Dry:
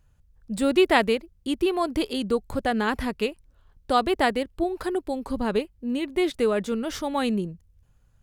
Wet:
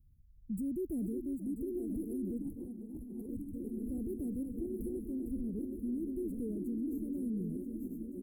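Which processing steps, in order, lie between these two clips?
backward echo that repeats 493 ms, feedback 78%, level -9 dB; inverse Chebyshev band-stop 880–4900 Hz, stop band 60 dB; 6.55–6.98 s: peaking EQ 290 Hz +14.5 dB 0.24 oct; peak limiter -28 dBFS, peak gain reduction 12.5 dB; 2.42–3.29 s: compressor with a negative ratio -39 dBFS, ratio -0.5; delay 488 ms -13 dB; 5.04–5.59 s: three bands expanded up and down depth 70%; trim -3 dB

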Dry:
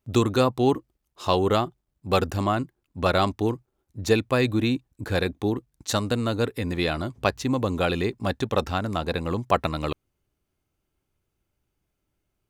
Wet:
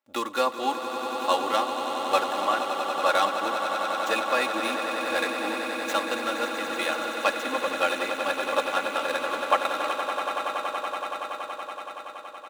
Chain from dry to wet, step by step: median filter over 9 samples; high-pass 730 Hz 12 dB/octave; comb 3.6 ms, depth 80%; on a send: echo with a slow build-up 94 ms, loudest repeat 8, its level -11 dB

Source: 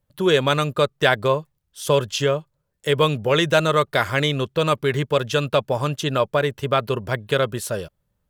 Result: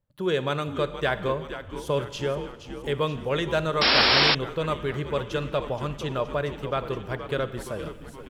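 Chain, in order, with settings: treble shelf 3.8 kHz -8 dB; reverse; upward compressor, threshold -25 dBFS; reverse; frequency-shifting echo 471 ms, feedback 60%, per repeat -92 Hz, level -11 dB; Schroeder reverb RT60 1.3 s, DRR 13 dB; painted sound noise, 3.81–4.35 s, 200–5600 Hz -12 dBFS; trim -7.5 dB

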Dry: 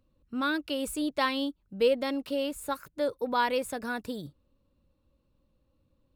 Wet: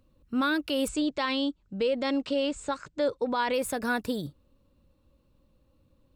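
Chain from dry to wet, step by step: 0.88–3.54 s: elliptic low-pass 7.9 kHz, stop band 40 dB; peak limiter -24.5 dBFS, peak gain reduction 9 dB; trim +5.5 dB

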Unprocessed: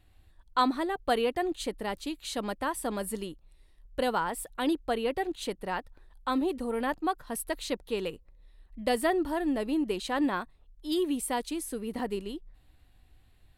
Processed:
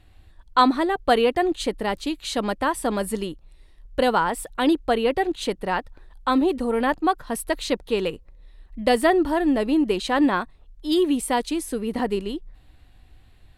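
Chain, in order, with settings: treble shelf 11 kHz -11 dB; trim +8.5 dB

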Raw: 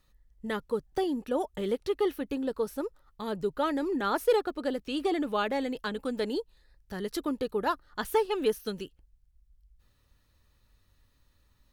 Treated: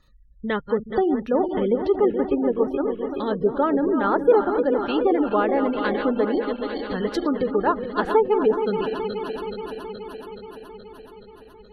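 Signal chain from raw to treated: backward echo that repeats 212 ms, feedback 82%, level -8.5 dB; spectral gate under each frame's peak -30 dB strong; low-pass that closes with the level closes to 1.4 kHz, closed at -24.5 dBFS; trim +8 dB

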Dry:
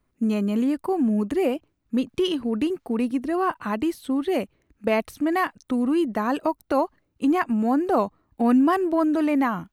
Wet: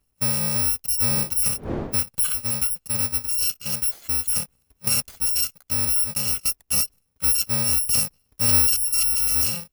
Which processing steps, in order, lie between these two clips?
bit-reversed sample order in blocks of 128 samples; 1.07–1.95 s: wind noise 390 Hz -36 dBFS

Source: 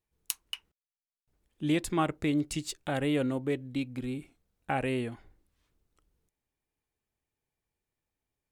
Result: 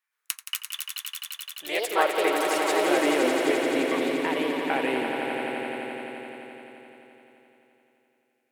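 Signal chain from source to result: ever faster or slower copies 296 ms, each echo +3 st, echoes 2; ten-band graphic EQ 125 Hz -8 dB, 250 Hz -7 dB, 500 Hz +3 dB, 2 kHz +7 dB, 16 kHz +3 dB; high-pass sweep 1.3 kHz -> 250 Hz, 0.38–3.48 s; on a send: echo with a slow build-up 86 ms, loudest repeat 5, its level -8 dB

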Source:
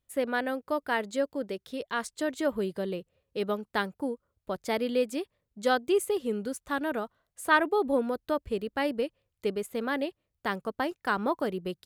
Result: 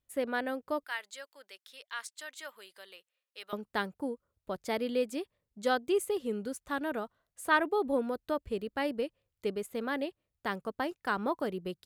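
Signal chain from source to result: 0.84–3.53 s: high-pass 1.5 kHz 12 dB/octave; trim -3.5 dB

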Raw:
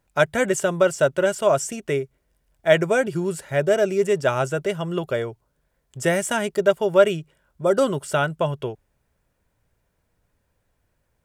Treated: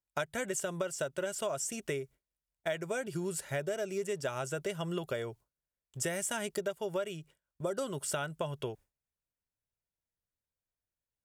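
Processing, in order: gate with hold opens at -37 dBFS; treble shelf 3.3 kHz +9 dB; compression 12:1, threshold -24 dBFS, peak gain reduction 16 dB; trim -7 dB

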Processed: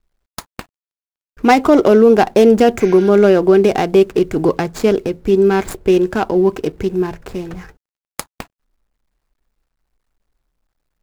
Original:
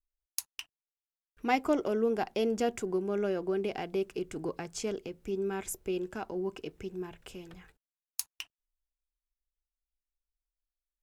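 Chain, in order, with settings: median filter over 15 samples; spectral replace 2.83–3.07 s, 1.4–6.5 kHz both; loudness maximiser +22 dB; trim -1 dB

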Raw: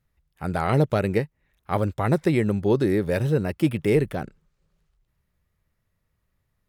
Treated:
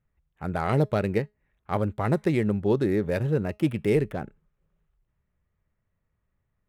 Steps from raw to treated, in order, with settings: local Wiener filter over 9 samples; feedback comb 210 Hz, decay 0.21 s, harmonics all, mix 30%

